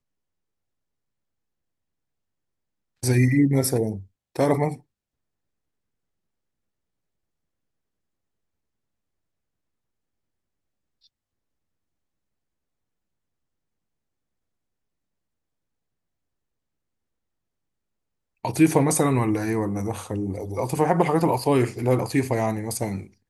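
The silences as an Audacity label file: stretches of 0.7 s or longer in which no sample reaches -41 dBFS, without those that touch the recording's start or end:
4.770000	18.450000	silence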